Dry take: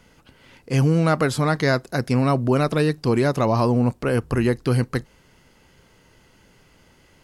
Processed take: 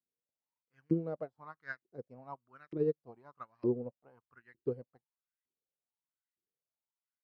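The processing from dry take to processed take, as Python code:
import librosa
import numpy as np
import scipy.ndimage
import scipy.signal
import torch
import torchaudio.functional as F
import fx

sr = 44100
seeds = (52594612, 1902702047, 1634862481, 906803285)

y = fx.bass_treble(x, sr, bass_db=13, treble_db=4)
y = fx.filter_lfo_bandpass(y, sr, shape='saw_up', hz=1.1, low_hz=330.0, high_hz=2000.0, q=5.8)
y = fx.upward_expand(y, sr, threshold_db=-45.0, expansion=2.5)
y = y * 10.0 ** (-3.0 / 20.0)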